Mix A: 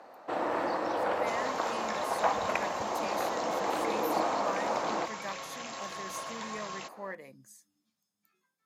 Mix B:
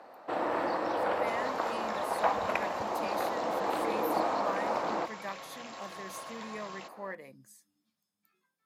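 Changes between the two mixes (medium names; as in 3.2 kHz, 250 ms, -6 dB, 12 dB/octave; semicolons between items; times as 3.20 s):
second sound -4.5 dB; master: add peaking EQ 6.5 kHz -5.5 dB 0.43 oct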